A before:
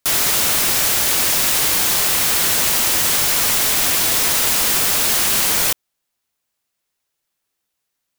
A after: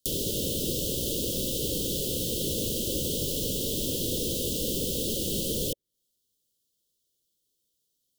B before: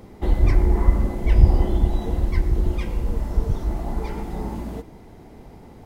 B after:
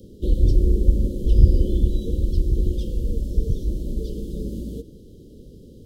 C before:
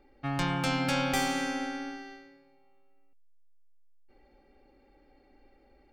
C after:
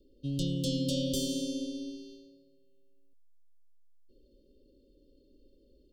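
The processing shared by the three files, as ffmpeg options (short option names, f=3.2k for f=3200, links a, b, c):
-filter_complex "[0:a]asuperstop=centerf=1300:order=20:qfactor=0.53,acrossover=split=880|2200[a][b][c];[c]acompressor=threshold=-32dB:ratio=6[d];[a][b][d]amix=inputs=3:normalize=0"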